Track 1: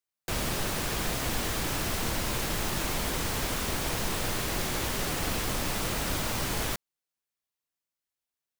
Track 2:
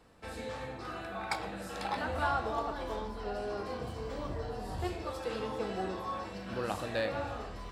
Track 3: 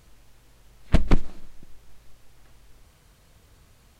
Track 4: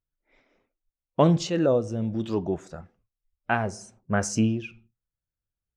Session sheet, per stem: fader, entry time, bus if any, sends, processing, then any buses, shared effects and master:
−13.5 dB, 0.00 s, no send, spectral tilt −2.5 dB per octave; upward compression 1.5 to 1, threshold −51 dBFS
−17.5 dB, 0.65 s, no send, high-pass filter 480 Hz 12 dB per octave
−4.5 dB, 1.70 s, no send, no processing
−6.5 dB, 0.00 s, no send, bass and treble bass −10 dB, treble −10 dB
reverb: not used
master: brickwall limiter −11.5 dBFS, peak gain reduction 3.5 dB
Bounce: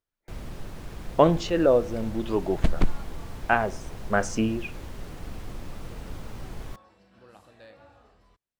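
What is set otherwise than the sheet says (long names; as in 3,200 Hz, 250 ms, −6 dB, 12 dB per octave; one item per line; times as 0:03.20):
stem 2: missing high-pass filter 480 Hz 12 dB per octave
stem 4 −6.5 dB → +3.5 dB
master: missing brickwall limiter −11.5 dBFS, peak gain reduction 3.5 dB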